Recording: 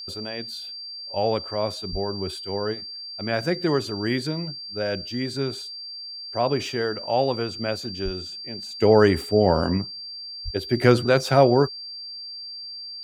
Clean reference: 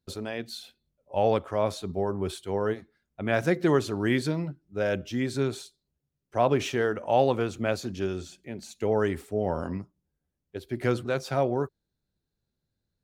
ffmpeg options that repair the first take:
-filter_complex "[0:a]bandreject=f=4.7k:w=30,asplit=3[a][b][c];[a]afade=t=out:st=1.91:d=0.02[d];[b]highpass=f=140:w=0.5412,highpass=f=140:w=1.3066,afade=t=in:st=1.91:d=0.02,afade=t=out:st=2.03:d=0.02[e];[c]afade=t=in:st=2.03:d=0.02[f];[d][e][f]amix=inputs=3:normalize=0,asplit=3[g][h][i];[g]afade=t=out:st=8.04:d=0.02[j];[h]highpass=f=140:w=0.5412,highpass=f=140:w=1.3066,afade=t=in:st=8.04:d=0.02,afade=t=out:st=8.16:d=0.02[k];[i]afade=t=in:st=8.16:d=0.02[l];[j][k][l]amix=inputs=3:normalize=0,asplit=3[m][n][o];[m]afade=t=out:st=10.44:d=0.02[p];[n]highpass=f=140:w=0.5412,highpass=f=140:w=1.3066,afade=t=in:st=10.44:d=0.02,afade=t=out:st=10.56:d=0.02[q];[o]afade=t=in:st=10.56:d=0.02[r];[p][q][r]amix=inputs=3:normalize=0,asetnsamples=n=441:p=0,asendcmd='8.79 volume volume -9.5dB',volume=0dB"

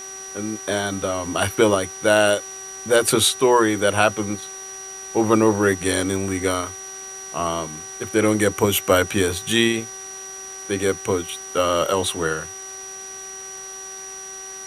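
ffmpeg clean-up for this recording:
-af "bandreject=f=383.5:t=h:w=4,bandreject=f=767:t=h:w=4,bandreject=f=1.1505k:t=h:w=4,bandreject=f=1.534k:t=h:w=4,bandreject=f=1.9175k:t=h:w=4,bandreject=f=5.8k:w=30,afwtdn=0.0079"

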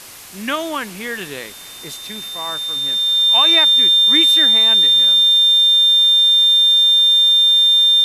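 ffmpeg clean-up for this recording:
-af "bandreject=f=3.6k:w=30,afftdn=nr=29:nf=-33"

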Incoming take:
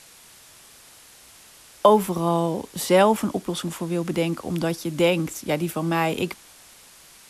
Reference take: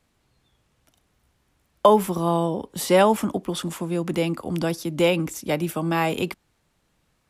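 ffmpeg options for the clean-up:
-af "afwtdn=0.0045"

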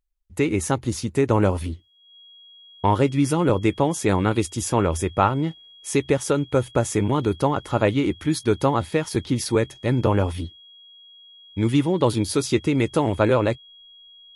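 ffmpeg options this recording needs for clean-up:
-af "bandreject=f=3.3k:w=30"

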